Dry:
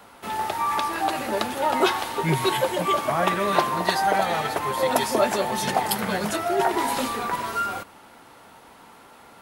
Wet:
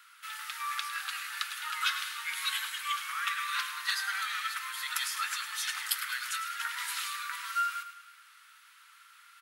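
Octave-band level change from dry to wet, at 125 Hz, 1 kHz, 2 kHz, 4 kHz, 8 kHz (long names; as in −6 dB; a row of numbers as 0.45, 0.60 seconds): below −40 dB, −13.5 dB, −4.0 dB, −3.0 dB, −4.0 dB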